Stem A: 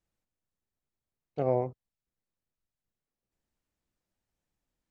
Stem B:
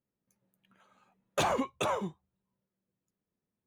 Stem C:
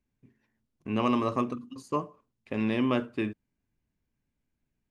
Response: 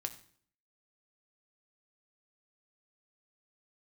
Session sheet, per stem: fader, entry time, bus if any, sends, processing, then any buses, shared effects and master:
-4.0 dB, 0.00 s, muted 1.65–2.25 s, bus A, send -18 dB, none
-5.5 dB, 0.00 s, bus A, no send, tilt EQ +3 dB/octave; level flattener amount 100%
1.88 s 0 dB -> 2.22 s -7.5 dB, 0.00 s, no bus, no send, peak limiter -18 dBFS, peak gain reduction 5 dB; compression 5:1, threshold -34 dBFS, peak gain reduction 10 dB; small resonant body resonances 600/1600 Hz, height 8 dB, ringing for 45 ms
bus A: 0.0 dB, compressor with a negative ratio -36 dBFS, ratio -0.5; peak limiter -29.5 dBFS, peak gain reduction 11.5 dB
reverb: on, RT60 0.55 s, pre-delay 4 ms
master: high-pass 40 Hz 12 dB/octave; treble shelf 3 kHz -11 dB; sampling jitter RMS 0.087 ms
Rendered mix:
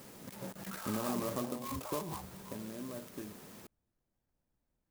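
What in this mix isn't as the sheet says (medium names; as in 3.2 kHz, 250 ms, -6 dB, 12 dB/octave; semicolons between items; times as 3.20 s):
stem A: send -18 dB -> -24 dB; master: missing high-pass 40 Hz 12 dB/octave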